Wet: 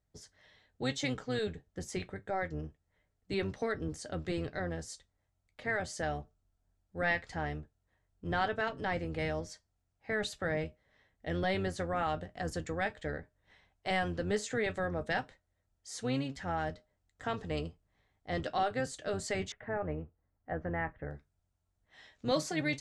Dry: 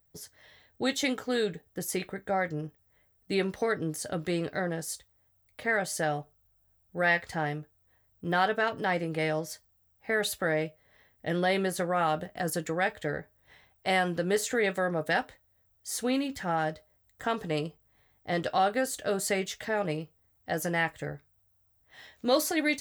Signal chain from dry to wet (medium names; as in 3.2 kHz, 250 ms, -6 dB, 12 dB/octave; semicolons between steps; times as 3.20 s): octave divider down 1 oct, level -2 dB; low-pass 7.8 kHz 24 dB/octave, from 19.52 s 1.8 kHz, from 21.11 s 8.1 kHz; trim -6 dB